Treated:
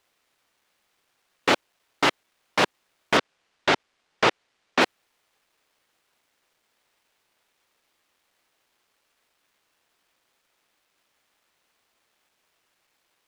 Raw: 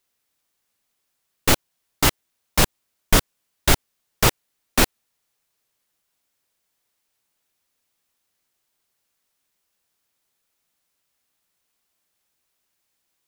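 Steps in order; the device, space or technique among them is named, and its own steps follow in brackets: phone line with mismatched companding (BPF 310–3300 Hz; G.711 law mismatch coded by mu); 3.17–4.81 LPF 6900 Hz 12 dB/oct; gain +1 dB

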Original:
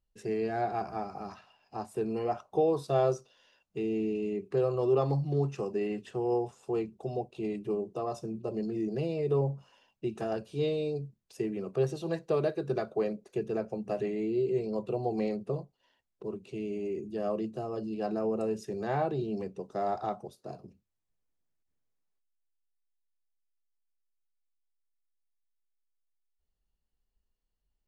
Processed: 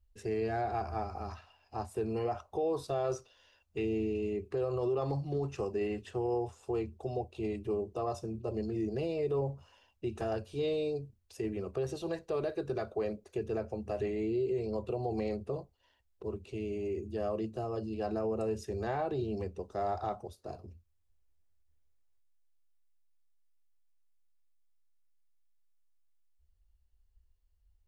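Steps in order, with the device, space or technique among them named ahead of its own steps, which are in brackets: car stereo with a boomy subwoofer (resonant low shelf 110 Hz +11 dB, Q 3; limiter -25 dBFS, peak gain reduction 7.5 dB); 3.04–3.85 dynamic EQ 2000 Hz, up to +6 dB, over -55 dBFS, Q 0.81

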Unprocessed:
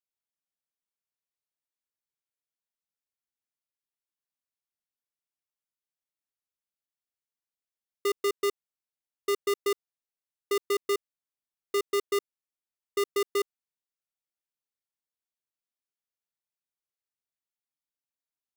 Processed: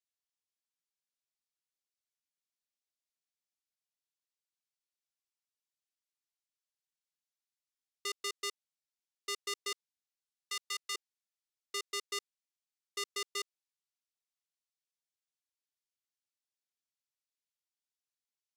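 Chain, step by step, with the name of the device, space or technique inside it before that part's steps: piezo pickup straight into a mixer (LPF 5600 Hz 12 dB/oct; differentiator); 9.72–10.95 HPF 900 Hz 12 dB/oct; gain +6 dB

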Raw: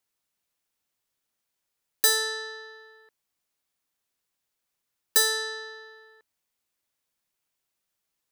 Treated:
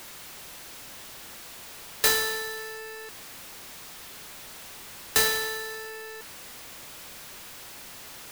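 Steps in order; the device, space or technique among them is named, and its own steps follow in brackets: early CD player with a faulty converter (zero-crossing step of -35.5 dBFS; clock jitter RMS 0.034 ms)

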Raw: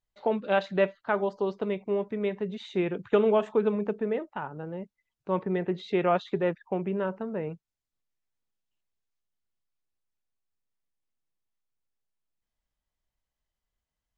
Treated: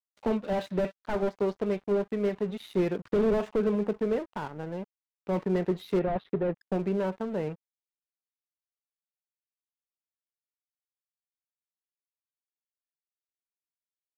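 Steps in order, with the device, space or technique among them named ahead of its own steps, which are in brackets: early transistor amplifier (crossover distortion -48.5 dBFS; slew limiter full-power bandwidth 24 Hz); 5.99–6.58 air absorption 390 m; gain +2.5 dB

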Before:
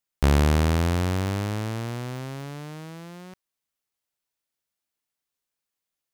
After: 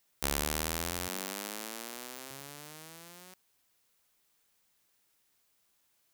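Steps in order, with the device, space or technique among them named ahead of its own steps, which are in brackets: turntable without a phono preamp (RIAA curve recording; white noise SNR 33 dB); 1.08–2.31 steep high-pass 160 Hz 48 dB/oct; gain -8.5 dB

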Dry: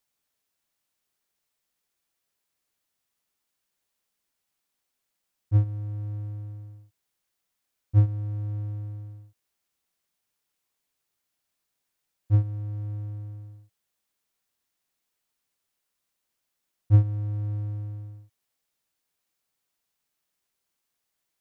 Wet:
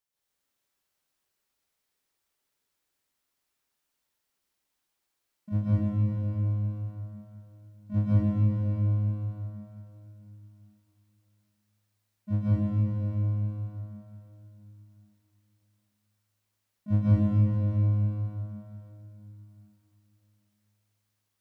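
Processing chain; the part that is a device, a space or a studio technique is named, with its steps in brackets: shimmer-style reverb (harmoniser +12 st -7 dB; reverb RT60 3.6 s, pre-delay 0.119 s, DRR -9 dB); gain -8.5 dB

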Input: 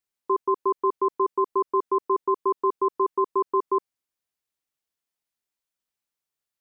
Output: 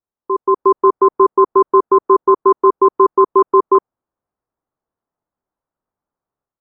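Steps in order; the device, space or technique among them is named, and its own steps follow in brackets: action camera in a waterproof case (LPF 1200 Hz 24 dB/oct; AGC gain up to 9.5 dB; gain +3.5 dB; AAC 48 kbps 32000 Hz)

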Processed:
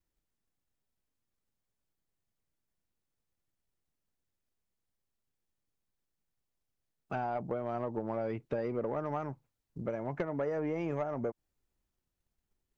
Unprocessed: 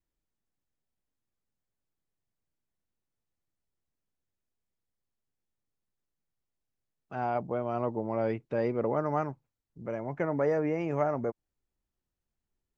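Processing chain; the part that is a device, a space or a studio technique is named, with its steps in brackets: drum-bus smash (transient shaper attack +8 dB, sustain +3 dB; compressor 6:1, threshold -29 dBFS, peak gain reduction 10.5 dB; soft clip -23.5 dBFS, distortion -18 dB)

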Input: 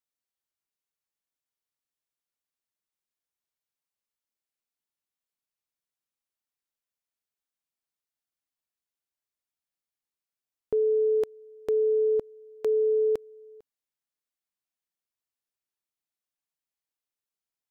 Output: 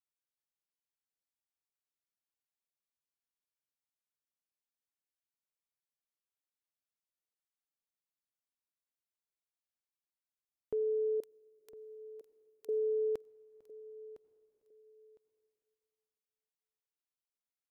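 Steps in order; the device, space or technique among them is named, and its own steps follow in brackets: 11.2–12.69 differentiator; feedback echo 1.008 s, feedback 23%, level -17 dB; compressed reverb return (on a send at -12 dB: reverb RT60 2.4 s, pre-delay 78 ms + compressor 8:1, threshold -43 dBFS, peak gain reduction 17.5 dB); on the sum: gain -9 dB

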